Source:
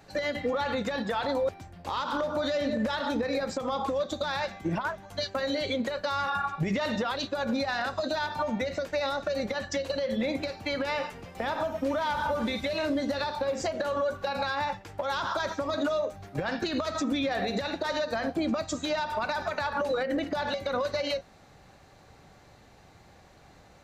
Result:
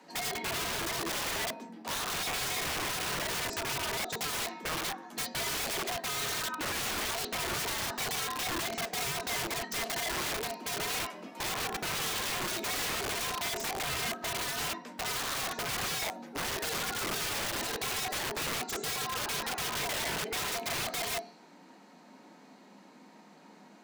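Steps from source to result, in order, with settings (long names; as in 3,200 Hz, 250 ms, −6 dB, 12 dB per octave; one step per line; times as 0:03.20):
loose part that buzzes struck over −37 dBFS, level −32 dBFS
frequency shifter +140 Hz
on a send at −9.5 dB: convolution reverb RT60 0.50 s, pre-delay 3 ms
on the sum: wrap-around overflow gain 27 dB
level −2 dB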